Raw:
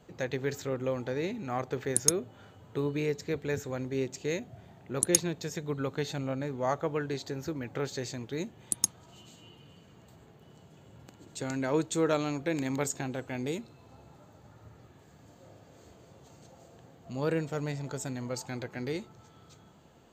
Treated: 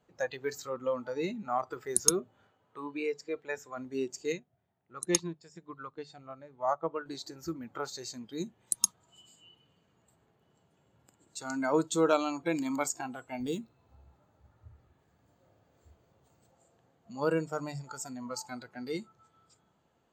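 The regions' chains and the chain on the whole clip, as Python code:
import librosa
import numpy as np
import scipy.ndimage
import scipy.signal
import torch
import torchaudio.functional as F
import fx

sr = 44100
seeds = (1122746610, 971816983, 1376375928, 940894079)

y = fx.chain(x, sr, fx.highpass(hz=330.0, slope=6),
    fx.high_shelf(hz=7000.0, db=-10.0), at=(2.47, 3.77))
y = fx.chain(y, sr, fx.air_absorb(metres=52.0),
    fx.upward_expand(threshold_db=-49.0, expansion=1.5), at=(4.32, 7.06))
y = fx.chain(y, sr, fx.low_shelf(hz=77.0, db=10.5),
    fx.resample_linear(factor=2), at=(13.4, 16.51))
y = fx.hum_notches(y, sr, base_hz=50, count=3)
y = fx.noise_reduce_blind(y, sr, reduce_db=15)
y = fx.peak_eq(y, sr, hz=1200.0, db=4.5, octaves=2.3)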